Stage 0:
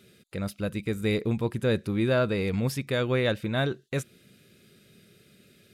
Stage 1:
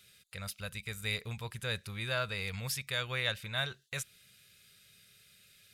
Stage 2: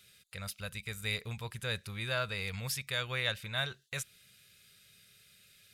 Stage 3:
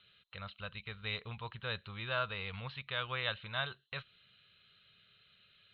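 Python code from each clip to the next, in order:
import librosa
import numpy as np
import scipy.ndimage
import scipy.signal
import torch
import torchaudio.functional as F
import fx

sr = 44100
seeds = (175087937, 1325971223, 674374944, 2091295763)

y1 = fx.tone_stack(x, sr, knobs='10-0-10')
y1 = y1 * 10.0 ** (2.5 / 20.0)
y2 = y1
y3 = scipy.signal.sosfilt(scipy.signal.cheby1(6, 9, 4200.0, 'lowpass', fs=sr, output='sos'), y2)
y3 = y3 * 10.0 ** (4.0 / 20.0)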